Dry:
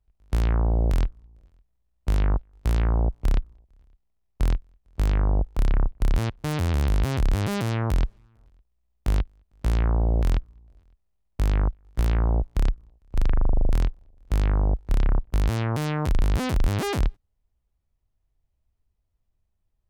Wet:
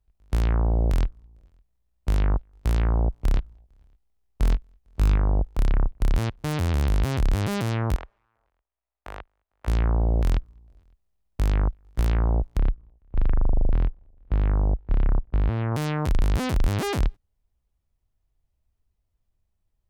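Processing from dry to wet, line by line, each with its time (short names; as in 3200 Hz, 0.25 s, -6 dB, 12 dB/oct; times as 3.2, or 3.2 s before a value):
3.34–5.16 doubler 19 ms -8 dB
7.96–9.68 three-band isolator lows -21 dB, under 520 Hz, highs -16 dB, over 2500 Hz
12.59–15.72 air absorption 430 m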